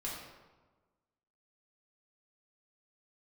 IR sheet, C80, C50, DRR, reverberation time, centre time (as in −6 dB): 3.5 dB, 1.0 dB, −6.0 dB, 1.3 s, 67 ms